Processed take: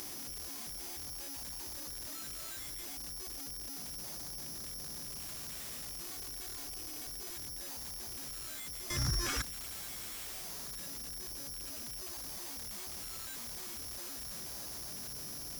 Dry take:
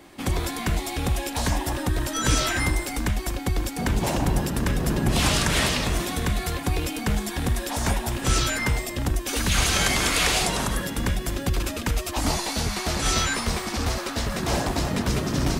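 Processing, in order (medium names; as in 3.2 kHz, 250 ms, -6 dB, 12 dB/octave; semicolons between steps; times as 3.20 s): 6.06–7.34 s: comb filter that takes the minimum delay 2.7 ms; careless resampling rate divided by 8×, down filtered, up zero stuff; 8.90–9.42 s: Chebyshev band-stop 140–1300 Hz, order 3; peak limiter -19 dBFS, peak gain reduction 25.5 dB; slew-rate limiter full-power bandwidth 48 Hz; trim +9 dB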